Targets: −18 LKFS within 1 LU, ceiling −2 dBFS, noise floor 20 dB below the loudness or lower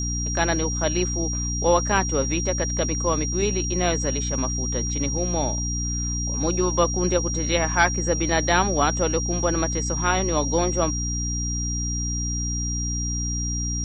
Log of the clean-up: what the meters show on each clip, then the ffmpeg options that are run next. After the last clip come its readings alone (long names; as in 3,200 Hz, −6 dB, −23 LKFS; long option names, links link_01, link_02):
mains hum 60 Hz; hum harmonics up to 300 Hz; level of the hum −25 dBFS; interfering tone 5,700 Hz; level of the tone −28 dBFS; integrated loudness −23.0 LKFS; sample peak −5.0 dBFS; target loudness −18.0 LKFS
→ -af "bandreject=frequency=60:width_type=h:width=4,bandreject=frequency=120:width_type=h:width=4,bandreject=frequency=180:width_type=h:width=4,bandreject=frequency=240:width_type=h:width=4,bandreject=frequency=300:width_type=h:width=4"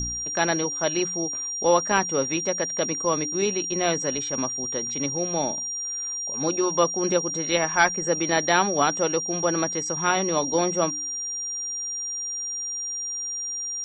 mains hum none found; interfering tone 5,700 Hz; level of the tone −28 dBFS
→ -af "bandreject=frequency=5700:width=30"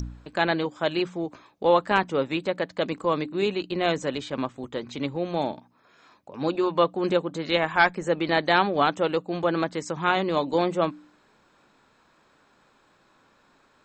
interfering tone none found; integrated loudness −25.5 LKFS; sample peak −6.5 dBFS; target loudness −18.0 LKFS
→ -af "volume=7.5dB,alimiter=limit=-2dB:level=0:latency=1"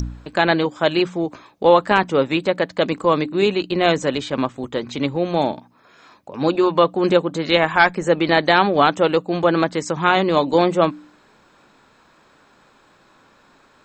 integrated loudness −18.5 LKFS; sample peak −2.0 dBFS; background noise floor −55 dBFS